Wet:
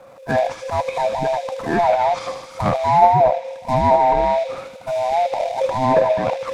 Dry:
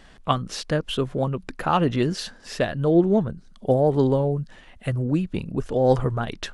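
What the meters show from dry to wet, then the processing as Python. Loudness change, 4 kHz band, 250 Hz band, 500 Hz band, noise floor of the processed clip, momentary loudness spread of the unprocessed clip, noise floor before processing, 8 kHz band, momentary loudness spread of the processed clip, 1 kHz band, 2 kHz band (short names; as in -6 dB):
+5.0 dB, -1.5 dB, -5.0 dB, +5.5 dB, -40 dBFS, 11 LU, -49 dBFS, n/a, 10 LU, +12.5 dB, +6.0 dB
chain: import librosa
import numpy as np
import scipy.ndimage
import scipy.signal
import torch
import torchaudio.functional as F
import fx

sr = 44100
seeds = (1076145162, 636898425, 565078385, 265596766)

p1 = fx.band_swap(x, sr, width_hz=500)
p2 = fx.notch(p1, sr, hz=1900.0, q=5.1)
p3 = fx.transient(p2, sr, attack_db=-6, sustain_db=12)
p4 = fx.graphic_eq(p3, sr, hz=(125, 250, 500, 1000, 2000, 4000), db=(9, 7, 8, 8, 10, -10))
p5 = fx.sample_hold(p4, sr, seeds[0], rate_hz=3000.0, jitter_pct=20)
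p6 = p4 + (p5 * librosa.db_to_amplitude(-9.0))
p7 = fx.env_lowpass_down(p6, sr, base_hz=1500.0, full_db=-1.5)
p8 = p7 + fx.echo_wet_highpass(p7, sr, ms=77, feedback_pct=72, hz=2900.0, wet_db=-4.0, dry=0)
y = p8 * librosa.db_to_amplitude(-8.0)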